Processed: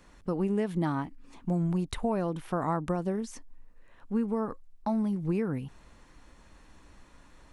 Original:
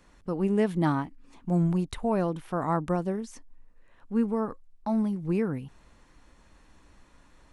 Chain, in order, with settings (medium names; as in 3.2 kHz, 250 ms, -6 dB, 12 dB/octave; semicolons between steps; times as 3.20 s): compression 6:1, threshold -27 dBFS, peak gain reduction 8 dB; trim +2 dB